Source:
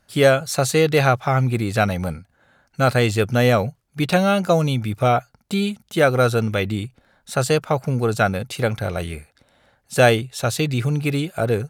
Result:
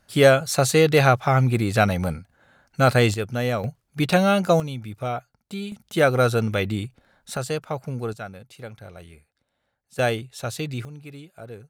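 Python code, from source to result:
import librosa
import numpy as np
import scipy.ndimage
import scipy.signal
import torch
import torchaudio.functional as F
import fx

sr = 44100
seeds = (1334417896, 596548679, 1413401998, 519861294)

y = fx.gain(x, sr, db=fx.steps((0.0, 0.0), (3.14, -8.0), (3.64, -1.0), (4.6, -10.5), (5.72, -2.0), (7.37, -8.5), (8.13, -17.0), (9.99, -8.0), (10.85, -19.0)))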